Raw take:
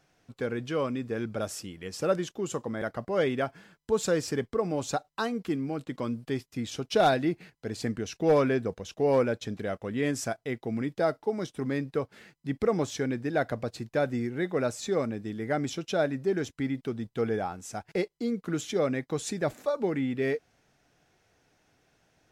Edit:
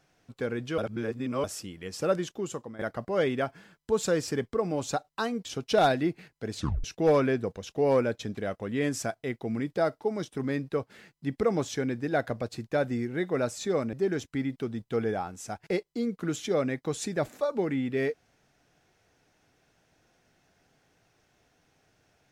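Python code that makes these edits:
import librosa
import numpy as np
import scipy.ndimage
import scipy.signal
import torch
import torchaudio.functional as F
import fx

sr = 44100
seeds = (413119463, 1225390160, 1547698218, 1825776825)

y = fx.edit(x, sr, fx.reverse_span(start_s=0.78, length_s=0.66),
    fx.fade_out_to(start_s=2.37, length_s=0.42, floor_db=-13.0),
    fx.cut(start_s=5.45, length_s=1.22),
    fx.tape_stop(start_s=7.77, length_s=0.29),
    fx.cut(start_s=15.15, length_s=1.03), tone=tone)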